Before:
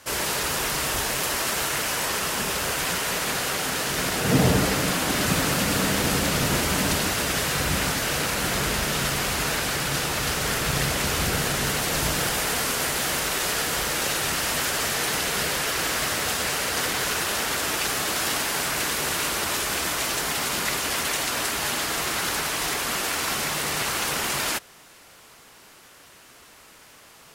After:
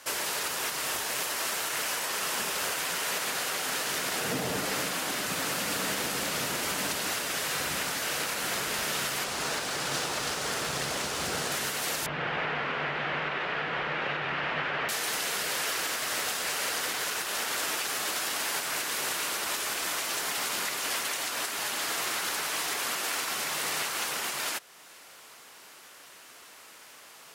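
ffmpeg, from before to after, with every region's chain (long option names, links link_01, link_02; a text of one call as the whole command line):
ffmpeg -i in.wav -filter_complex "[0:a]asettb=1/sr,asplit=3[link_01][link_02][link_03];[link_01]atrim=end=9.244[link_04];[link_02]atrim=start=9.24:end=11.52,asetpts=PTS-STARTPTS,afade=type=in:duration=0.004:curve=qsin,afade=type=out:start_time=2.276:duration=0.004:curve=qsin,adynamicsmooth=sensitivity=7:basefreq=5300,equalizer=frequency=2200:width_type=o:width=1.5:gain=-4.5[link_05];[link_03]atrim=start=11.516[link_06];[link_04][link_05]acrossfade=duration=0.004:curve1=hsin:curve2=qsin[link_07];[link_07][link_06]acrossfade=duration=0.004:curve1=qsin:curve2=hsin,asettb=1/sr,asplit=3[link_08][link_09][link_10];[link_08]atrim=end=12.064[link_11];[link_09]atrim=start=12.06:end=14.89,asetpts=PTS-STARTPTS,afade=type=in:duration=0.004:curve=qsin,afade=type=out:start_time=2.826:duration=0.004:curve=qsin,lowpass=frequency=2700:width=0.5412,lowpass=frequency=2700:width=1.3066,equalizer=frequency=150:width=6.4:gain=13[link_12];[link_10]atrim=start=14.886[link_13];[link_11][link_12]acrossfade=duration=0.004:curve1=hsin:curve2=qsin[link_14];[link_14][link_13]acrossfade=duration=0.004:curve1=qsin:curve2=hsin,highpass=frequency=460:poles=1,alimiter=limit=-20.5dB:level=0:latency=1:release=411" out.wav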